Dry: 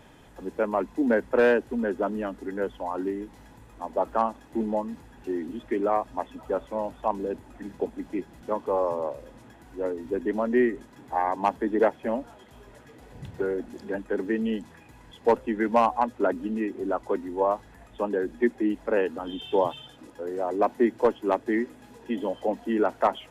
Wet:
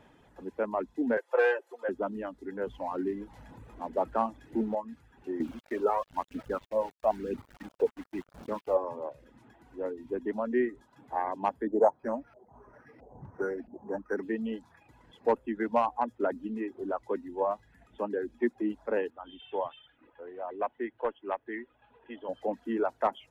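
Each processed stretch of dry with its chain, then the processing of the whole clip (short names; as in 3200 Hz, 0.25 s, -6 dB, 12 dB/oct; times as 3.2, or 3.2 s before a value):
1.17–1.89 steep high-pass 450 Hz + upward compressor, threshold -40 dBFS + comb 5.8 ms, depth 93%
2.67–4.75 G.711 law mismatch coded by mu + low shelf 370 Hz +4.5 dB
5.4–8.77 bell 280 Hz +2 dB 2.3 oct + phaser 1 Hz, delay 2.4 ms, feedback 67% + sample gate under -38 dBFS
11.67–14.23 LFO low-pass saw up 1.5 Hz 580–2400 Hz + decimation joined by straight lines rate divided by 6×
19.1–22.29 steep low-pass 3400 Hz 48 dB/oct + bell 200 Hz -11.5 dB 2.4 oct
whole clip: low shelf 99 Hz -5.5 dB; reverb removal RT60 0.6 s; high shelf 4200 Hz -10 dB; gain -4.5 dB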